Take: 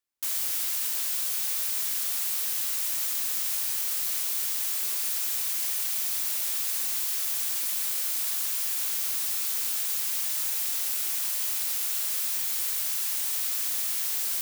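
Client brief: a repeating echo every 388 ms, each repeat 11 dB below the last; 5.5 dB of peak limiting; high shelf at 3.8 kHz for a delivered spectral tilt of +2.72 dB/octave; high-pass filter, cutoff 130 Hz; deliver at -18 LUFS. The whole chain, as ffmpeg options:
-af "highpass=130,highshelf=f=3800:g=-3.5,alimiter=limit=0.0708:level=0:latency=1,aecho=1:1:388|776|1164:0.282|0.0789|0.0221,volume=3.98"

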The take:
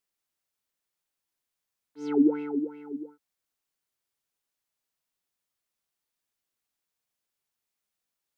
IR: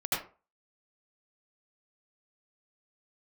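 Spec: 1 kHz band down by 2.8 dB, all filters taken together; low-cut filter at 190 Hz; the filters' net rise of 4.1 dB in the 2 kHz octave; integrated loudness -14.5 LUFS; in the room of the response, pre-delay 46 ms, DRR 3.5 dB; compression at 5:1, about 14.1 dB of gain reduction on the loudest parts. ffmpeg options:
-filter_complex "[0:a]highpass=190,equalizer=f=1000:t=o:g=-5.5,equalizer=f=2000:t=o:g=7.5,acompressor=threshold=0.02:ratio=5,asplit=2[s0][s1];[1:a]atrim=start_sample=2205,adelay=46[s2];[s1][s2]afir=irnorm=-1:irlink=0,volume=0.266[s3];[s0][s3]amix=inputs=2:normalize=0,volume=16.8"

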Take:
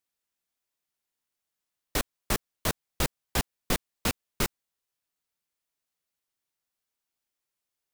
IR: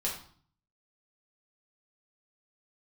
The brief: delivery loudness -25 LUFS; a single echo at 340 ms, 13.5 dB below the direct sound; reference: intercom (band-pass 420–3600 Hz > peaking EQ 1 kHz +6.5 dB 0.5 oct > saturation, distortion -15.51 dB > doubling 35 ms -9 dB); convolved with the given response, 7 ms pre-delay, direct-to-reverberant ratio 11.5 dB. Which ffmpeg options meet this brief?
-filter_complex "[0:a]aecho=1:1:340:0.211,asplit=2[s0][s1];[1:a]atrim=start_sample=2205,adelay=7[s2];[s1][s2]afir=irnorm=-1:irlink=0,volume=0.158[s3];[s0][s3]amix=inputs=2:normalize=0,highpass=420,lowpass=3600,equalizer=f=1000:t=o:w=0.5:g=6.5,asoftclip=threshold=0.0668,asplit=2[s4][s5];[s5]adelay=35,volume=0.355[s6];[s4][s6]amix=inputs=2:normalize=0,volume=3.76"

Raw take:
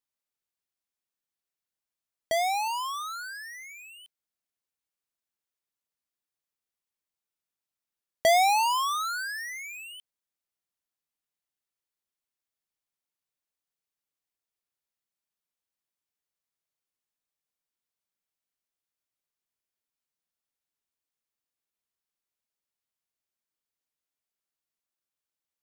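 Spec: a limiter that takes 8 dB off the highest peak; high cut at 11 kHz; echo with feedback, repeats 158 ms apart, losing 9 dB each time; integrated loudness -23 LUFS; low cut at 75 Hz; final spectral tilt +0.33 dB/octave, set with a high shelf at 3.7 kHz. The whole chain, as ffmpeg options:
-af "highpass=75,lowpass=11000,highshelf=f=3700:g=4.5,alimiter=limit=0.1:level=0:latency=1,aecho=1:1:158|316|474|632:0.355|0.124|0.0435|0.0152,volume=1.88"

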